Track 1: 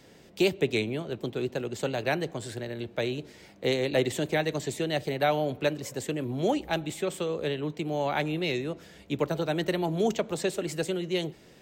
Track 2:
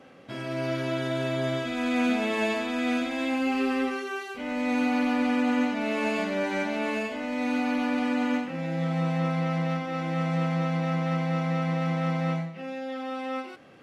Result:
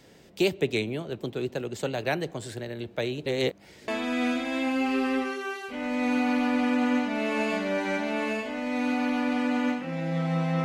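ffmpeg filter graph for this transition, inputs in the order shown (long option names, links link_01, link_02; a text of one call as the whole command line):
ffmpeg -i cue0.wav -i cue1.wav -filter_complex "[0:a]apad=whole_dur=10.64,atrim=end=10.64,asplit=2[link_01][link_02];[link_01]atrim=end=3.262[link_03];[link_02]atrim=start=3.258:end=3.882,asetpts=PTS-STARTPTS,areverse[link_04];[1:a]atrim=start=2.538:end=9.3[link_05];[link_03][link_04]acrossfade=duration=0.004:curve1=hsin:curve2=hsin[link_06];[link_06][link_05]acrossfade=duration=0.004:curve1=hsin:curve2=hsin" out.wav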